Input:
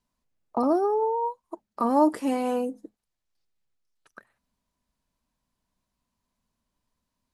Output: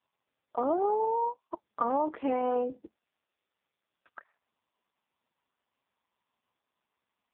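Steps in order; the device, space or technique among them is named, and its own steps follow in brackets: voicemail (BPF 400–3200 Hz; compressor 10:1, threshold -26 dBFS, peak gain reduction 11 dB; gain +3 dB; AMR-NB 4.75 kbps 8000 Hz)

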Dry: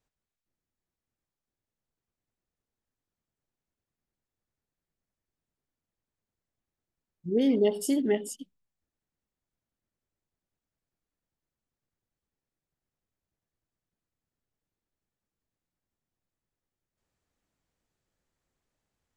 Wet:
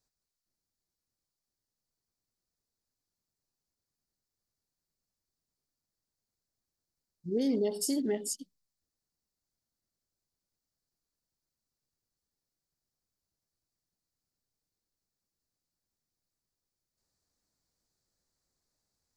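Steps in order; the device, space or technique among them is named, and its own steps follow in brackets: over-bright horn tweeter (resonant high shelf 3700 Hz +6.5 dB, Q 3; limiter -18 dBFS, peak gain reduction 4 dB); gain -3.5 dB

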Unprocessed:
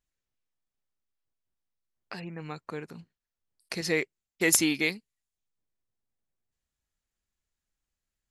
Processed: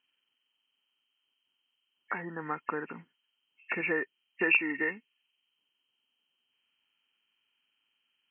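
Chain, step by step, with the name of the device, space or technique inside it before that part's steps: 4.49–4.91 comb 2.1 ms, depth 33%; hearing aid with frequency lowering (nonlinear frequency compression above 1700 Hz 4:1; compressor 2.5:1, threshold -32 dBFS, peak gain reduction 13.5 dB; speaker cabinet 260–5300 Hz, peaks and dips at 260 Hz +5 dB, 620 Hz -4 dB, 950 Hz +7 dB, 1400 Hz +9 dB, 2100 Hz -6 dB, 3100 Hz +9 dB); gain +3 dB

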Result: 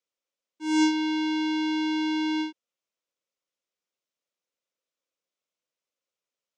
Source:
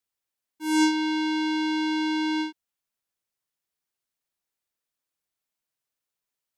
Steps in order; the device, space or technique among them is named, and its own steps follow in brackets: television speaker (speaker cabinet 210–6900 Hz, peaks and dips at 530 Hz +9 dB, 820 Hz -6 dB, 1700 Hz -6 dB, 4400 Hz -4 dB)

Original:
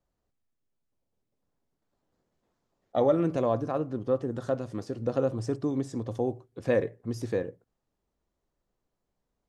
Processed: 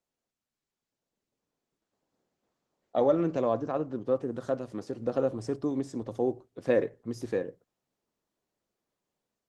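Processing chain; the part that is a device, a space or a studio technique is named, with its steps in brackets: 6.21–6.84 dynamic EQ 350 Hz, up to +4 dB, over -37 dBFS, Q 2.3; video call (HPF 160 Hz 12 dB/oct; AGC gain up to 6 dB; gain -6.5 dB; Opus 16 kbps 48000 Hz)

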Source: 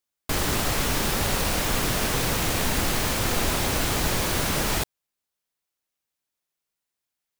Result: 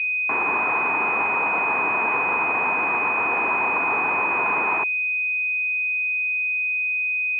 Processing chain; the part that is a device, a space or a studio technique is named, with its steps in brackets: toy sound module (decimation joined by straight lines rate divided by 4×; pulse-width modulation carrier 2500 Hz; speaker cabinet 540–4000 Hz, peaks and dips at 570 Hz -10 dB, 1000 Hz +7 dB, 2300 Hz +9 dB, 3500 Hz -3 dB); gain +6.5 dB

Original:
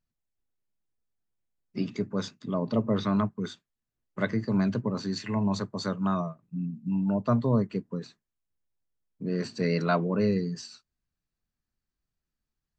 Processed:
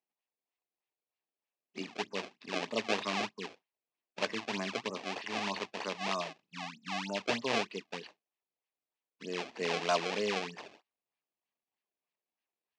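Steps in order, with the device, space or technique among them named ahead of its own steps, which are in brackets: circuit-bent sampling toy (decimation with a swept rate 27×, swing 160% 3.2 Hz; speaker cabinet 500–5800 Hz, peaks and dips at 550 Hz -3 dB, 1400 Hz -9 dB, 2600 Hz +5 dB)

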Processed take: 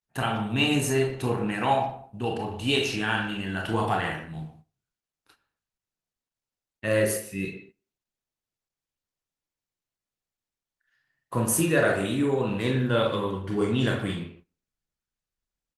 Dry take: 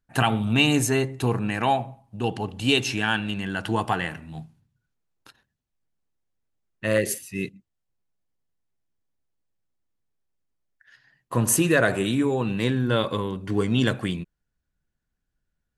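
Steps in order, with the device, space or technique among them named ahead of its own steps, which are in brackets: speakerphone in a meeting room (reverb RT60 0.50 s, pre-delay 24 ms, DRR -0.5 dB; speakerphone echo 0.12 s, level -13 dB; AGC gain up to 5.5 dB; gate -42 dBFS, range -15 dB; gain -7.5 dB; Opus 24 kbps 48000 Hz)

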